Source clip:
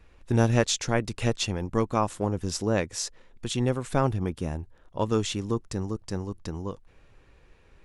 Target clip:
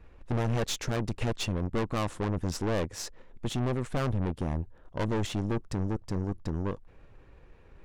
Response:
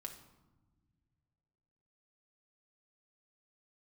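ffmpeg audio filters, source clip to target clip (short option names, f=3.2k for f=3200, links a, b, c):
-af "highshelf=f=2.4k:g=-12,aeval=exprs='(tanh(44.7*val(0)+0.7)-tanh(0.7))/44.7':c=same,volume=7dB"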